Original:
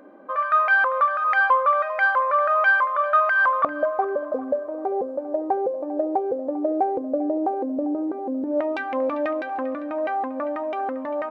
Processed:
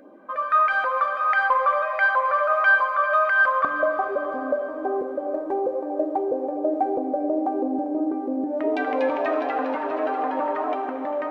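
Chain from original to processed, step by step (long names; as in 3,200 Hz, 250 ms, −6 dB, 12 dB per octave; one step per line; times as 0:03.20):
auto-filter notch sine 2.9 Hz 360–2,100 Hz
0:08.39–0:10.75: echo with shifted repeats 240 ms, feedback 52%, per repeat +140 Hz, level −4 dB
convolution reverb RT60 4.4 s, pre-delay 5 ms, DRR 5.5 dB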